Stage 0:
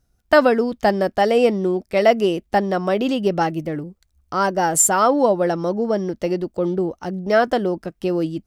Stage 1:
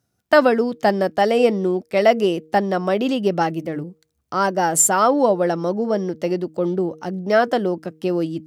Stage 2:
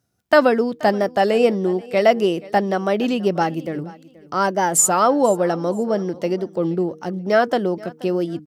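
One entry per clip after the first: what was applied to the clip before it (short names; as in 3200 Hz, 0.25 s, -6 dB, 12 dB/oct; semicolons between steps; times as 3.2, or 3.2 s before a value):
HPF 100 Hz 24 dB/oct; de-hum 156.7 Hz, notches 3
feedback echo 0.479 s, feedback 27%, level -21 dB; record warp 33 1/3 rpm, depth 100 cents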